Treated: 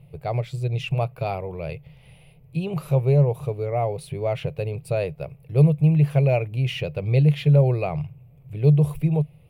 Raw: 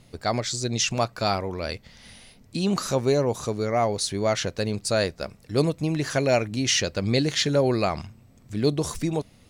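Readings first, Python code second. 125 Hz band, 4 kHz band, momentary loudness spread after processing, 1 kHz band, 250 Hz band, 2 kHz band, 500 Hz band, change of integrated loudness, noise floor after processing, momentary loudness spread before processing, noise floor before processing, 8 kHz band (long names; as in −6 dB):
+10.0 dB, −11.5 dB, 13 LU, −3.5 dB, +1.5 dB, −5.5 dB, −1.0 dB, +2.5 dB, −51 dBFS, 8 LU, −55 dBFS, below −20 dB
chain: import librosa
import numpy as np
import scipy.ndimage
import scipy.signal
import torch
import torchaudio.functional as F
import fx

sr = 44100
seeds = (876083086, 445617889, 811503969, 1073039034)

y = fx.curve_eq(x, sr, hz=(100.0, 150.0, 220.0, 450.0, 820.0, 1700.0, 2500.0, 4000.0, 6400.0, 12000.0), db=(0, 15, -18, 1, -3, -16, 0, -17, -29, -2))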